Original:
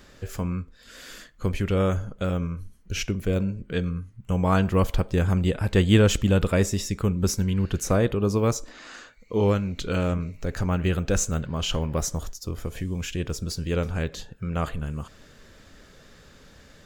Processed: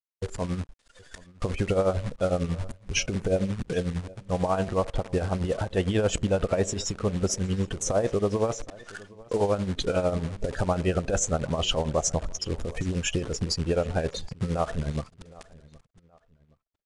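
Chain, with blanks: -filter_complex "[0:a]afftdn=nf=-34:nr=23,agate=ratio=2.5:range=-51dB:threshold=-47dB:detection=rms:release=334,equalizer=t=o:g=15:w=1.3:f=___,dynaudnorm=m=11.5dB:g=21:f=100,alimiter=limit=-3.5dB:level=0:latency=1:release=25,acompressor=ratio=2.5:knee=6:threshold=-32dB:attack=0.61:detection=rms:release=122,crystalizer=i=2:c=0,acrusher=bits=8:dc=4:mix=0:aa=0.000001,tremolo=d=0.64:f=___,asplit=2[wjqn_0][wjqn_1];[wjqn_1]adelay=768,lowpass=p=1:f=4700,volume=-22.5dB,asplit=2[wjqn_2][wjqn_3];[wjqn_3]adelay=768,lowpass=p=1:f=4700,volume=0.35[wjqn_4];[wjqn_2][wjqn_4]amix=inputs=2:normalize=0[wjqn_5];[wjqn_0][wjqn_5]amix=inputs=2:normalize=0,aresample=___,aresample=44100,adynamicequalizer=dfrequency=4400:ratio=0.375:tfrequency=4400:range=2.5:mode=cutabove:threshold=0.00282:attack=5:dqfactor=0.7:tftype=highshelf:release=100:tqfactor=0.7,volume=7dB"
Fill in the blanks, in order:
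690, 11, 22050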